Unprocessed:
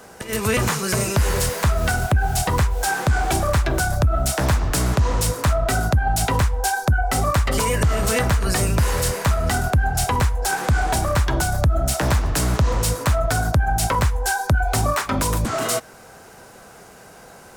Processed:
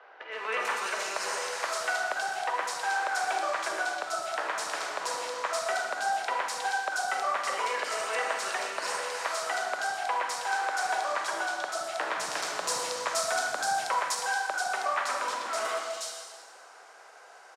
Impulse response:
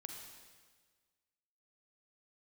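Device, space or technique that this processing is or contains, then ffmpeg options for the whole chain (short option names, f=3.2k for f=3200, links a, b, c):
supermarket ceiling speaker: -filter_complex "[0:a]asettb=1/sr,asplit=3[a][b][c];[a]atrim=end=11.984[d];[b]atrim=start=11.98:end=13.83,asetpts=PTS-STARTPTS,afade=t=in:d=0.004:c=qsin,afade=t=out:st=1.846:d=0.004:c=qsin,bass=f=250:g=11,treble=f=4k:g=7[e];[c]atrim=start=13.826[f];[d][e]acrossfade=d=0.004:c1=hsin:c2=qsin[g];[g][f]acrossfade=d=0.004:c1=qsin:c2=hsin,highpass=330,lowpass=5.6k,highpass=630[h];[1:a]atrim=start_sample=2205[i];[h][i]afir=irnorm=-1:irlink=0,acrossover=split=250|3300[j][k][l];[j]adelay=160[m];[l]adelay=320[n];[m][k][n]amix=inputs=3:normalize=0"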